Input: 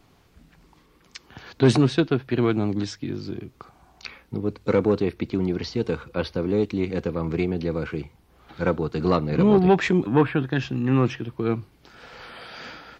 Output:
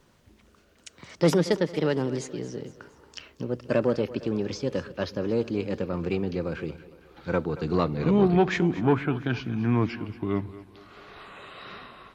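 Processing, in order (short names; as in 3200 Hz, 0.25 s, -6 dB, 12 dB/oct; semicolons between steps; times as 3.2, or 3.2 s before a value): speed glide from 135% -> 79%; split-band echo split 310 Hz, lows 0.123 s, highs 0.229 s, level -16 dB; gain -3.5 dB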